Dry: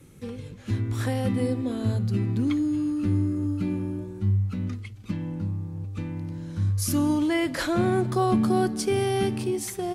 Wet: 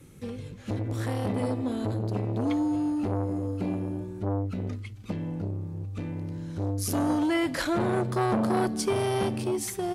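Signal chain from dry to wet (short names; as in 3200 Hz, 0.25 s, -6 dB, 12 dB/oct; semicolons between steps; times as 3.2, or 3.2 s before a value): core saturation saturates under 730 Hz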